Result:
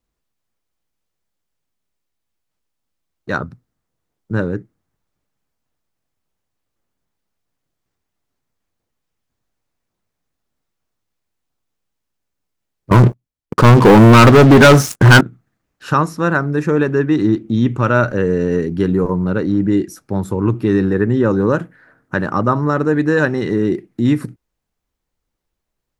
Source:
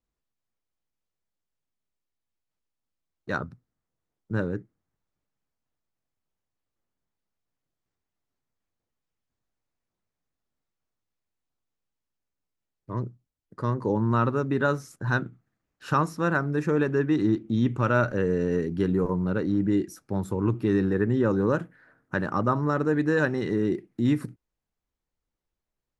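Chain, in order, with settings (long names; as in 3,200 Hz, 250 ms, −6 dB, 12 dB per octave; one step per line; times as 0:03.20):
0:12.91–0:15.21: leveller curve on the samples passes 5
level +8.5 dB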